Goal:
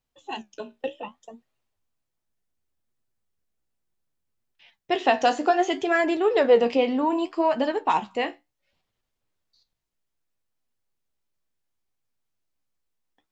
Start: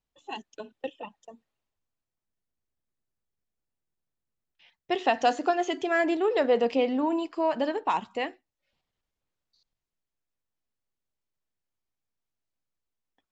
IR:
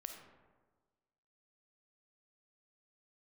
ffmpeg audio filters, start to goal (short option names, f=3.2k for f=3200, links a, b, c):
-af "flanger=delay=7.8:depth=9.5:regen=55:speed=0.66:shape=sinusoidal,volume=8dB"